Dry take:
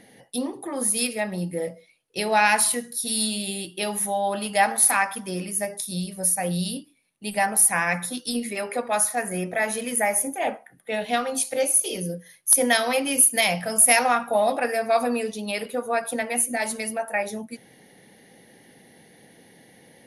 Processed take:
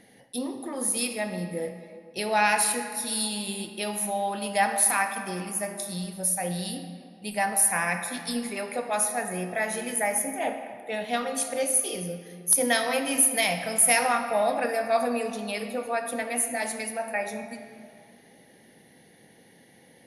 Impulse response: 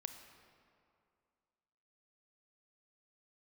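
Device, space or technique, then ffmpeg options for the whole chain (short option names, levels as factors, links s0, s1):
stairwell: -filter_complex "[1:a]atrim=start_sample=2205[s0];[0:a][s0]afir=irnorm=-1:irlink=0"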